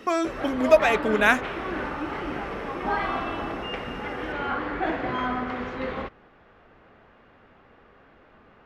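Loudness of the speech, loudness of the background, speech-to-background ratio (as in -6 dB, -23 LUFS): -22.0 LUFS, -30.0 LUFS, 8.0 dB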